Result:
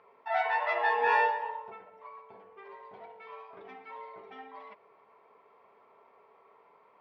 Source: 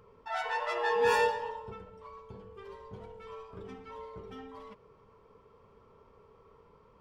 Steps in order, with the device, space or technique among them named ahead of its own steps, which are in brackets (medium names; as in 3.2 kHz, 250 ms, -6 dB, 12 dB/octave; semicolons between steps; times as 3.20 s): 1.01–2.83 s: peaking EQ 4.2 kHz -5 dB 1.1 oct; phone earpiece (cabinet simulation 490–3700 Hz, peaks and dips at 490 Hz -7 dB, 700 Hz +9 dB, 1.3 kHz -4 dB, 2.1 kHz +6 dB, 3.1 kHz -6 dB); trim +3 dB